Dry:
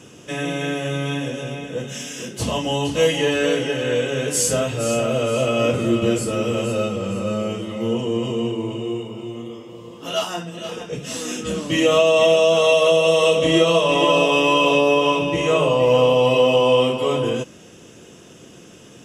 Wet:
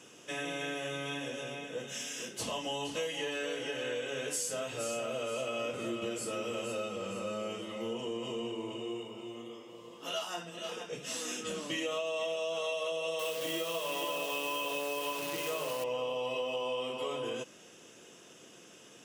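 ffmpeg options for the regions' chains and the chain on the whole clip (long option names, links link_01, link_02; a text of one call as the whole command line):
ffmpeg -i in.wav -filter_complex "[0:a]asettb=1/sr,asplit=3[link_01][link_02][link_03];[link_01]atrim=end=13.194[link_04];[link_02]atrim=start=13.19:end=15.84,asetpts=PTS-STARTPTS,afade=type=in:duration=0.004:curve=qsin,afade=type=out:start_time=2.646:duration=0.004:curve=qsin,highpass=61,acrusher=bits=5:dc=4:mix=0:aa=0.000001,highshelf=frequency=9500:gain=5[link_05];[link_03]atrim=start=15.836[link_06];[link_04][link_05]acrossfade=duration=0.004:curve1=hsin:curve2=qsin[link_07];[link_07][link_06]acrossfade=duration=0.004:curve1=qsin:curve2=hsin,highpass=frequency=550:poles=1,acompressor=threshold=-26dB:ratio=5,volume=-7dB" out.wav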